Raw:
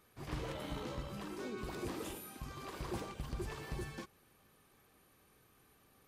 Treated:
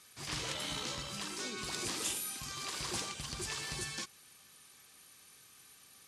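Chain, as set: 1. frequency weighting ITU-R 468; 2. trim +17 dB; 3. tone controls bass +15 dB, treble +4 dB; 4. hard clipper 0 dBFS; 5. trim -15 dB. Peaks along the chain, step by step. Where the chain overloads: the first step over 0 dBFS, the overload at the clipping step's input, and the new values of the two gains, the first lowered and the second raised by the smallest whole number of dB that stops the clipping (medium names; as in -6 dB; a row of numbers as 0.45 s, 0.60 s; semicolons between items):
-25.0 dBFS, -8.0 dBFS, -5.0 dBFS, -5.0 dBFS, -20.0 dBFS; nothing clips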